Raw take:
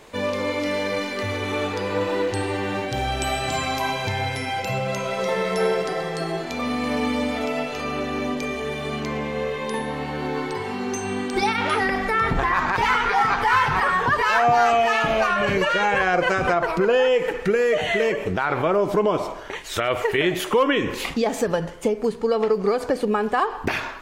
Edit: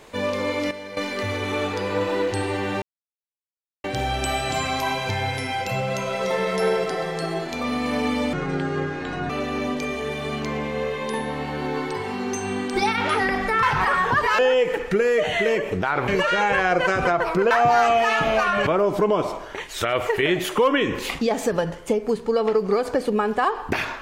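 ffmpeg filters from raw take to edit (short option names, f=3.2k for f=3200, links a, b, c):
-filter_complex "[0:a]asplit=11[a][b][c][d][e][f][g][h][i][j][k];[a]atrim=end=0.712[l];[b]atrim=start=0.708:end=0.972,asetpts=PTS-STARTPTS,volume=-11dB[m];[c]atrim=start=0.968:end=2.82,asetpts=PTS-STARTPTS,afade=t=out:st=1.848:d=0.004:c=hsin,apad=pad_dur=1.02[n];[d]atrim=start=2.82:end=7.314,asetpts=PTS-STARTPTS,afade=t=in:d=0.004:c=hsin[o];[e]atrim=start=7.31:end=7.9,asetpts=PTS-STARTPTS,asetrate=26901,aresample=44100,atrim=end_sample=42654,asetpts=PTS-STARTPTS[p];[f]atrim=start=7.896:end=12.232[q];[g]atrim=start=13.578:end=14.342[r];[h]atrim=start=16.928:end=18.622[s];[i]atrim=start=15.498:end=16.932[t];[j]atrim=start=14.338:end=15.502[u];[k]atrim=start=18.618[v];[l][m]acrossfade=d=0.004:c1=hsin:c2=hsin[w];[n][o]concat=n=2:v=0:a=1[x];[w][x]acrossfade=d=0.004:c1=hsin:c2=hsin[y];[y][p]acrossfade=d=0.004:c1=hsin:c2=hsin[z];[z][q]acrossfade=d=0.004:c1=hsin:c2=hsin[aa];[aa][r]acrossfade=d=0.004:c1=hsin:c2=hsin[ab];[ab][s]acrossfade=d=0.004:c1=hsin:c2=hsin[ac];[ac][t]acrossfade=d=0.004:c1=hsin:c2=hsin[ad];[ad][u]acrossfade=d=0.004:c1=hsin:c2=hsin[ae];[ae][v]acrossfade=d=0.004:c1=hsin:c2=hsin"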